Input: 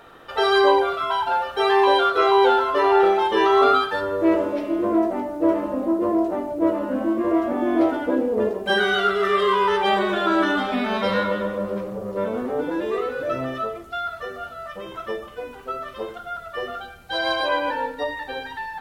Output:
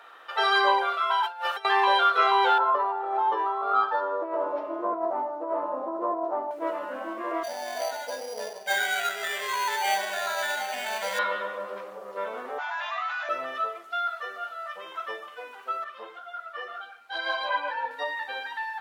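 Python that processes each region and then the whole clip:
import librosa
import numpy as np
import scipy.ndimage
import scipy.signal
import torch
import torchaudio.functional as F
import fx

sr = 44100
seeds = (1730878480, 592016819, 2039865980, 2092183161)

y = fx.chain(x, sr, fx.high_shelf(hz=4400.0, db=7.0),
    fx.over_compress(threshold_db=-28.0, ratio=-0.5), at=(1.23, 1.65))
y = fx.chain(y, sr, fx.lowpass(hz=6300.0, slope=12),
    fx.high_shelf_res(hz=1500.0, db=-13.0, q=1.5),
    fx.over_compress(threshold_db=-20.0, ratio=-1.0), at=(2.58, 6.51))
y = fx.chain(y, sr, fx.peak_eq(hz=120.0, db=14.0, octaves=0.69),
    fx.fixed_phaser(hz=1200.0, stages=6),
    fx.sample_hold(seeds[0], rate_hz=5300.0, jitter_pct=0), at=(7.43, 11.19))
y = fx.chain(y, sr, fx.brickwall_bandpass(low_hz=610.0, high_hz=7300.0),
    fx.doubler(ms=26.0, db=-8.5),
    fx.env_flatten(amount_pct=70), at=(12.58, 13.29))
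y = fx.chain(y, sr, fx.high_shelf(hz=5200.0, db=-7.5),
    fx.ensemble(), at=(15.84, 17.91))
y = scipy.signal.sosfilt(scipy.signal.butter(2, 930.0, 'highpass', fs=sr, output='sos'), y)
y = fx.high_shelf(y, sr, hz=4300.0, db=-8.5)
y = y * 10.0 ** (1.5 / 20.0)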